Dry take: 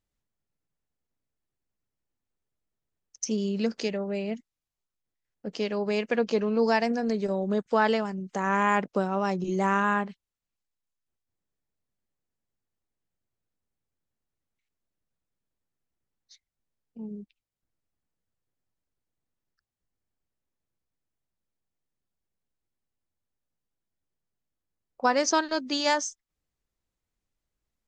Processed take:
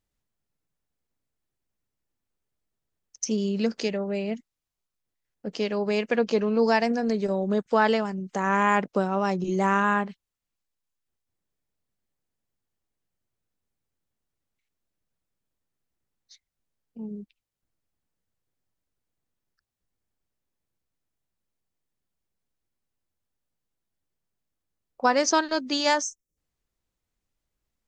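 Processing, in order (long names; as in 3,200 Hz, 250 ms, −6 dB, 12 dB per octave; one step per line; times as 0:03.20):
gain on a spectral selection 0:26.02–0:26.37, 590–5,300 Hz −21 dB
level +2 dB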